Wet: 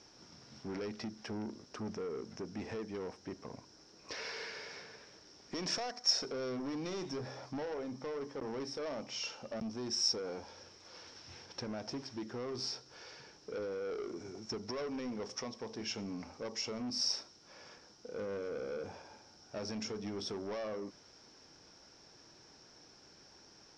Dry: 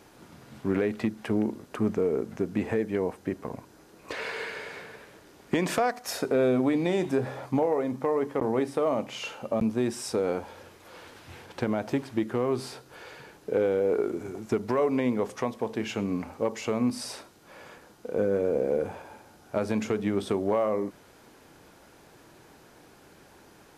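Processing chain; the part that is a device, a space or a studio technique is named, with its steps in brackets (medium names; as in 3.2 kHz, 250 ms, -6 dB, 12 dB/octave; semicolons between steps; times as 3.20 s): overdriven synthesiser ladder filter (saturation -26.5 dBFS, distortion -9 dB; four-pole ladder low-pass 5.6 kHz, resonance 90%); trim +4 dB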